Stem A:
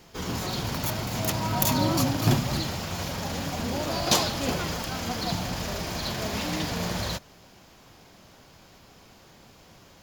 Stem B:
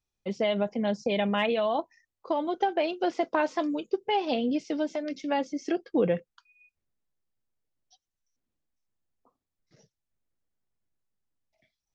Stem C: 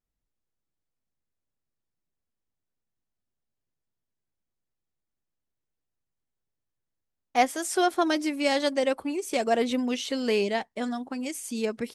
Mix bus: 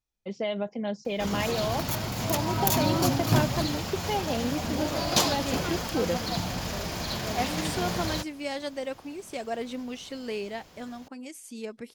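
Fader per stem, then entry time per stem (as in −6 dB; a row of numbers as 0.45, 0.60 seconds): −1.0, −3.5, −8.5 decibels; 1.05, 0.00, 0.00 seconds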